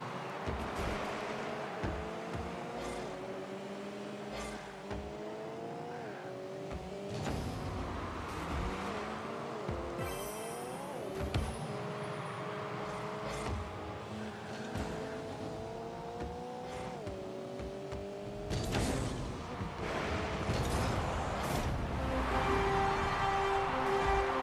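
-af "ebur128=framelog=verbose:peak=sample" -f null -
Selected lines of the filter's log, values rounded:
Integrated loudness:
  I:         -37.9 LUFS
  Threshold: -47.9 LUFS
Loudness range:
  LRA:         8.7 LU
  Threshold: -58.7 LUFS
  LRA low:   -42.4 LUFS
  LRA high:  -33.7 LUFS
Sample peak:
  Peak:      -19.1 dBFS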